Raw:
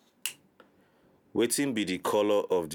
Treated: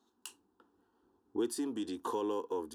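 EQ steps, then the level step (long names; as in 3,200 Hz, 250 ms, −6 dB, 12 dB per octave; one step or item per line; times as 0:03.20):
high-shelf EQ 5,600 Hz −7.5 dB
parametric band 16,000 Hz −12.5 dB 0.27 octaves
phaser with its sweep stopped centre 580 Hz, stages 6
−5.5 dB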